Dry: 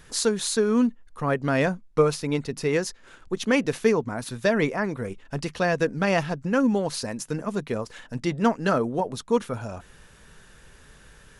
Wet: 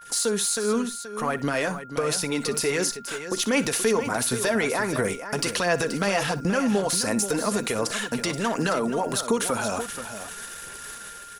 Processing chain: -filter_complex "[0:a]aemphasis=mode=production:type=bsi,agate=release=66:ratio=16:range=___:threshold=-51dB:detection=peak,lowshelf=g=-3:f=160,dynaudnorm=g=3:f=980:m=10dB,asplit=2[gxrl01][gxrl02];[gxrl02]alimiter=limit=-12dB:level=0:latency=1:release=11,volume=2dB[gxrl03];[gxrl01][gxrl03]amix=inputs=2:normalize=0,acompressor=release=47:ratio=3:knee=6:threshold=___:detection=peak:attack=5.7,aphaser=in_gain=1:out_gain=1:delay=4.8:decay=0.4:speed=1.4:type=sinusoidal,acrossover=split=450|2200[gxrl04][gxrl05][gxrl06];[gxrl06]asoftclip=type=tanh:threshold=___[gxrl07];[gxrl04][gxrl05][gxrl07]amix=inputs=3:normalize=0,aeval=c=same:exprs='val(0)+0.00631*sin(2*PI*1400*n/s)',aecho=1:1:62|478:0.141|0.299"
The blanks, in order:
-29dB, -28dB, -14.5dB